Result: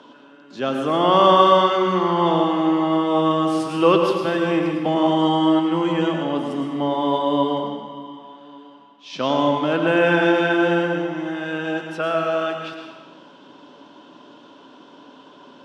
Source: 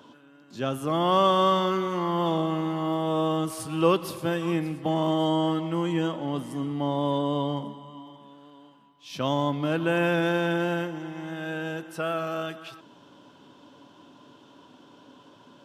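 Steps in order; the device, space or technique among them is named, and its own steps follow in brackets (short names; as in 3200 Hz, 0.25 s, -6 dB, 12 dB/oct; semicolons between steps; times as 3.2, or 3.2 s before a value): supermarket ceiling speaker (BPF 230–5100 Hz; reverb RT60 1.3 s, pre-delay 93 ms, DRR 3 dB); 7.62–9.36 LPF 8000 Hz 24 dB/oct; gain +6 dB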